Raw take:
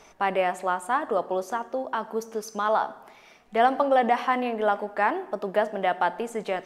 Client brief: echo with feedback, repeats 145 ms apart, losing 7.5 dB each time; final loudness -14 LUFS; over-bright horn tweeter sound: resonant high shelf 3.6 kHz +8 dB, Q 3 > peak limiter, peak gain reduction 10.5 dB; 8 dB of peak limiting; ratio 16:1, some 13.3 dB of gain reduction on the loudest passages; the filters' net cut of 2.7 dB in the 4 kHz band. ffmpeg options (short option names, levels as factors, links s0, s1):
-af "equalizer=f=4000:t=o:g=-8,acompressor=threshold=0.0355:ratio=16,alimiter=level_in=1.06:limit=0.0631:level=0:latency=1,volume=0.944,highshelf=f=3600:t=q:w=3:g=8,aecho=1:1:145|290|435|580|725:0.422|0.177|0.0744|0.0312|0.0131,volume=23.7,alimiter=limit=0.562:level=0:latency=1"